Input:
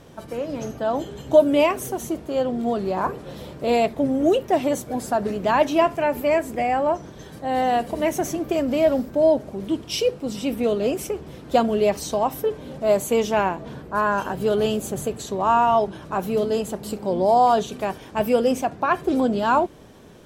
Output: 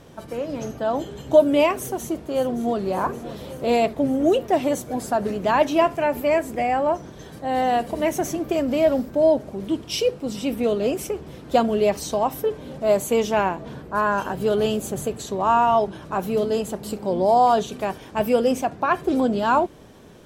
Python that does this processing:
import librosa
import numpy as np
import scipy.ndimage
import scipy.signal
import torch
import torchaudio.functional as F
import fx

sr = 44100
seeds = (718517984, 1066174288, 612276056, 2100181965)

y = fx.echo_throw(x, sr, start_s=1.76, length_s=1.03, ms=570, feedback_pct=75, wet_db=-14.0)